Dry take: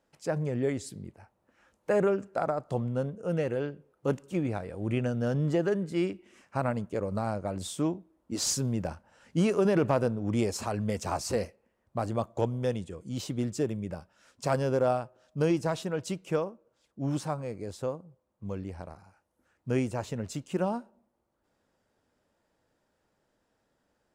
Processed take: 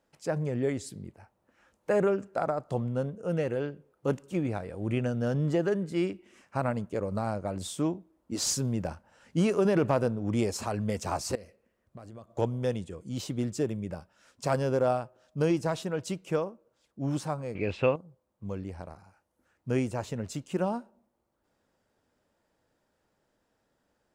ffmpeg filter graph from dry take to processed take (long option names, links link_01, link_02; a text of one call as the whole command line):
ffmpeg -i in.wav -filter_complex "[0:a]asettb=1/sr,asplit=3[link_01][link_02][link_03];[link_01]atrim=end=11.354[link_04];[link_02]atrim=start=11.35:end=12.38,asetpts=PTS-STARTPTS,afade=type=in:duration=0.004:curve=qsin,afade=type=out:start_time=1.026:duration=0.004:curve=qsin,equalizer=frequency=860:width_type=o:width=0.33:gain=-7.5,acompressor=threshold=-43dB:ratio=6:attack=3.2:release=140:knee=1:detection=peak[link_05];[link_03]atrim=start=12.376[link_06];[link_04][link_05]acrossfade=duration=0.004:curve1=hsin:curve2=qsin[link_07];[link_07][link_06]acrossfade=duration=0.004:curve1=qsin:curve2=hsin,asettb=1/sr,asplit=3[link_08][link_09][link_10];[link_08]atrim=end=17.554[link_11];[link_09]atrim=start=17.55:end=17.96,asetpts=PTS-STARTPTS,afade=type=in:duration=0.004:curve=qsin,afade=type=out:start_time=0.406:duration=0.004:curve=qsin,aeval=exprs='val(0)*gte(abs(val(0)),0.001)':channel_layout=same,acontrast=85,lowpass=frequency=2600:width_type=q:width=11[link_12];[link_10]atrim=start=17.956[link_13];[link_11][link_12]acrossfade=duration=0.004:curve1=hsin:curve2=qsin[link_14];[link_14][link_13]acrossfade=duration=0.004:curve1=qsin:curve2=hsin" out.wav